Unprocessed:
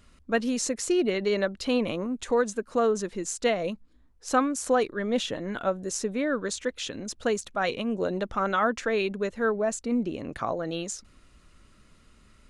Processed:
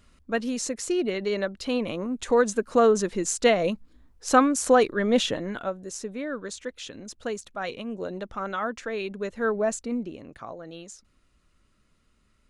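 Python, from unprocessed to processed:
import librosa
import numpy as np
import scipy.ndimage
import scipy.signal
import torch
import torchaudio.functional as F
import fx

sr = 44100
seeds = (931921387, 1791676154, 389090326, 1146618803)

y = fx.gain(x, sr, db=fx.line((1.86, -1.5), (2.54, 5.0), (5.28, 5.0), (5.76, -5.0), (8.98, -5.0), (9.66, 2.0), (10.33, -9.5)))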